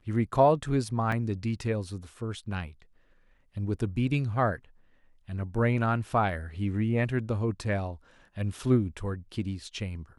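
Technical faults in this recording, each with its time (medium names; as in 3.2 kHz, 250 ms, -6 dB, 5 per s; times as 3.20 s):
1.12 s: dropout 3.4 ms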